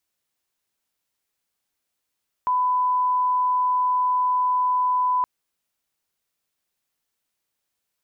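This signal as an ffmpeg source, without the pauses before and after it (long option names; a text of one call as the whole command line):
ffmpeg -f lavfi -i "sine=frequency=1000:duration=2.77:sample_rate=44100,volume=0.06dB" out.wav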